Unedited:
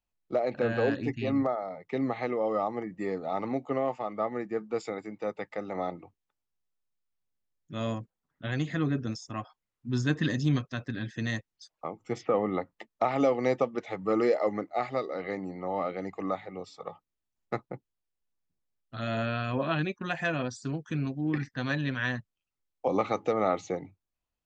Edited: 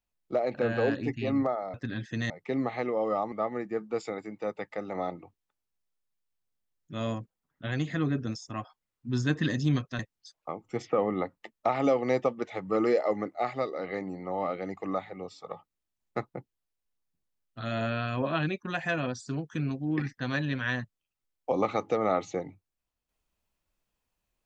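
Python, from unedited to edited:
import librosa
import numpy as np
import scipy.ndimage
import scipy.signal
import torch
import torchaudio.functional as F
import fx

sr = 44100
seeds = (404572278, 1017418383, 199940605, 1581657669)

y = fx.edit(x, sr, fx.cut(start_s=2.76, length_s=1.36),
    fx.move(start_s=10.79, length_s=0.56, to_s=1.74), tone=tone)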